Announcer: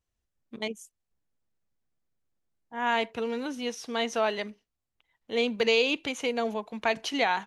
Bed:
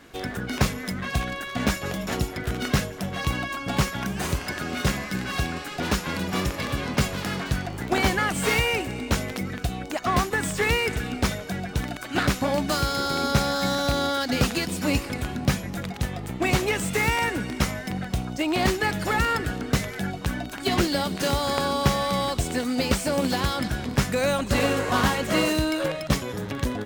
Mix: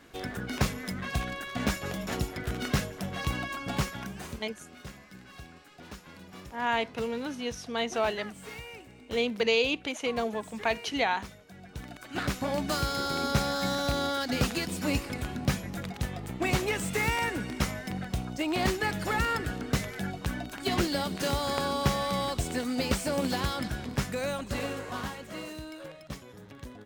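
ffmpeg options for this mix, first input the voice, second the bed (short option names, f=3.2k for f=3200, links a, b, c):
-filter_complex "[0:a]adelay=3800,volume=-1.5dB[a];[1:a]volume=10.5dB,afade=t=out:st=3.63:d=0.85:silence=0.16788,afade=t=in:st=11.52:d=1.18:silence=0.16788,afade=t=out:st=23.37:d=1.94:silence=0.237137[b];[a][b]amix=inputs=2:normalize=0"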